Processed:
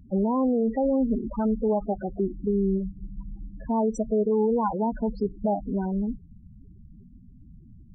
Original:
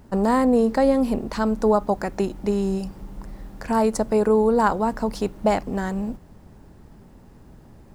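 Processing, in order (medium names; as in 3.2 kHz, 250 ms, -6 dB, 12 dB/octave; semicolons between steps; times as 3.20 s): loudest bins only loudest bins 8; dynamic bell 1 kHz, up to -3 dB, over -31 dBFS, Q 0.71; peak limiter -16.5 dBFS, peak gain reduction 6 dB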